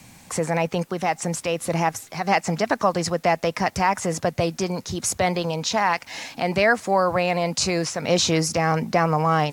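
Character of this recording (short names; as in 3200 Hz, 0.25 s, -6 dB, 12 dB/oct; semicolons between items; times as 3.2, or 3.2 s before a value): noise floor -50 dBFS; spectral tilt -4.0 dB/oct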